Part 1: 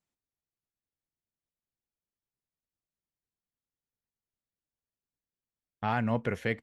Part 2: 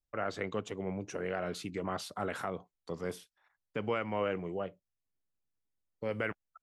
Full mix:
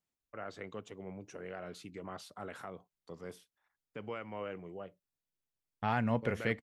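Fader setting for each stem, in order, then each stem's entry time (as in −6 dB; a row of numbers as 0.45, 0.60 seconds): −2.5, −8.5 decibels; 0.00, 0.20 seconds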